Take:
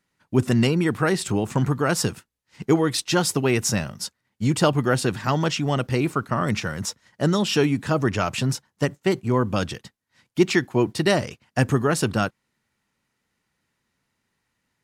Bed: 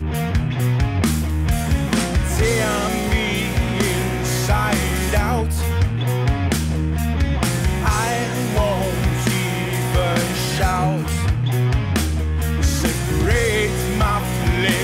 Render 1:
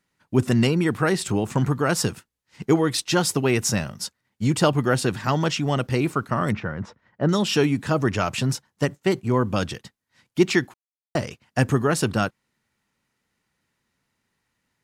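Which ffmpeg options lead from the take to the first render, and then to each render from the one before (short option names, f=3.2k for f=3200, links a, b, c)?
-filter_complex "[0:a]asettb=1/sr,asplit=3[a][b][c];[a]atrim=end=6.524[d];[b]atrim=start=6.52:end=7.29,asetpts=PTS-STARTPTS,afade=t=in:d=0.004:c=qsin,afade=t=out:st=0.766:d=0.004:c=qsin,lowpass=1.7k[e];[c]atrim=start=7.286[f];[d][e]acrossfade=d=0.004:c1=hsin:c2=qsin[g];[g][f]acrossfade=d=0.004:c1=qsin:c2=hsin,asplit=3[h][i][j];[h]atrim=end=10.74,asetpts=PTS-STARTPTS,afade=t=out:st=10.736:d=0.004:c=hsin[k];[i]atrim=start=10.74:end=11.15,asetpts=PTS-STARTPTS,volume=0[l];[j]atrim=start=11.15,asetpts=PTS-STARTPTS,afade=t=in:d=0.004:c=hsin[m];[k][l][m]concat=n=3:v=0:a=1"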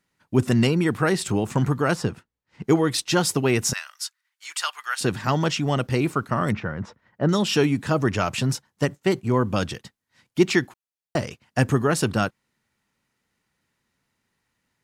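-filter_complex "[0:a]asplit=3[a][b][c];[a]afade=t=out:st=1.94:d=0.02[d];[b]lowpass=f=1.7k:p=1,afade=t=in:st=1.94:d=0.02,afade=t=out:st=2.64:d=0.02[e];[c]afade=t=in:st=2.64:d=0.02[f];[d][e][f]amix=inputs=3:normalize=0,asettb=1/sr,asplit=3[g][h][i];[g]atrim=end=3.734[j];[h]atrim=start=3.73:end=5.01,asetpts=PTS-STARTPTS,afade=t=in:d=0.004:c=qsin,afade=t=out:st=1.276:d=0.004:c=qsin,highpass=f=1.2k:w=0.5412,highpass=f=1.2k:w=1.3066[k];[i]atrim=start=5.006[l];[j][k]acrossfade=d=0.004:c1=hsin:c2=qsin[m];[m][l]acrossfade=d=0.004:c1=qsin:c2=hsin"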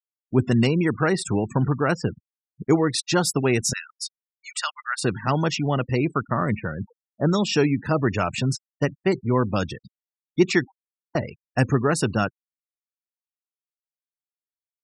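-af "bandreject=f=3.1k:w=11,afftfilt=real='re*gte(hypot(re,im),0.0282)':imag='im*gte(hypot(re,im),0.0282)':win_size=1024:overlap=0.75"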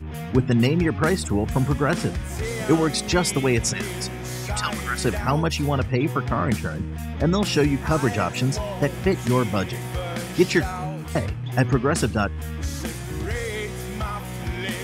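-filter_complex "[1:a]volume=-10.5dB[a];[0:a][a]amix=inputs=2:normalize=0"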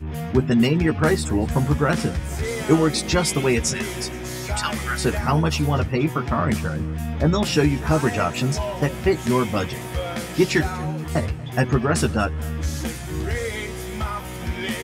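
-filter_complex "[0:a]asplit=2[a][b];[b]adelay=13,volume=-5dB[c];[a][c]amix=inputs=2:normalize=0,aecho=1:1:238|476|714|952:0.0841|0.0446|0.0236|0.0125"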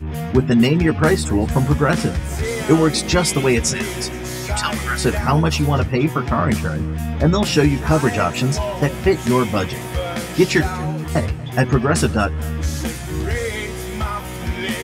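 -af "volume=3.5dB,alimiter=limit=-2dB:level=0:latency=1"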